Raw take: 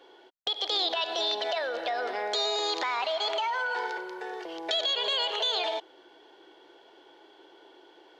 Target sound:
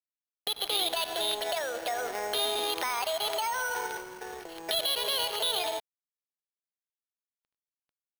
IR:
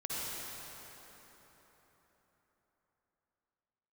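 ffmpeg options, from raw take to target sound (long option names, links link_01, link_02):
-af "acrusher=samples=6:mix=1:aa=0.000001,aeval=exprs='sgn(val(0))*max(abs(val(0))-0.00631,0)':channel_layout=same"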